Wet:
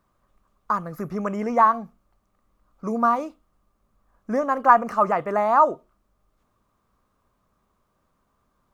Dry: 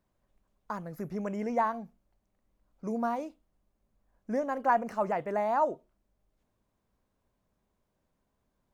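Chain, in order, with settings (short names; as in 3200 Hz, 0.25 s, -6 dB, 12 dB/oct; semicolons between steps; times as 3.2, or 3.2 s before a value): bell 1200 Hz +14.5 dB 0.35 oct; gain +6.5 dB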